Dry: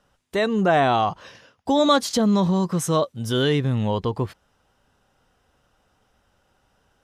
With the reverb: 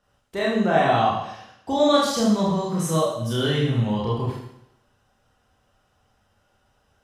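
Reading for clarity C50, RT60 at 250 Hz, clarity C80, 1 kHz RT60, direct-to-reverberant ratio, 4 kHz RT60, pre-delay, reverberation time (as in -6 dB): 2.0 dB, 0.75 s, 5.0 dB, 0.80 s, -5.5 dB, 0.75 s, 28 ms, 0.80 s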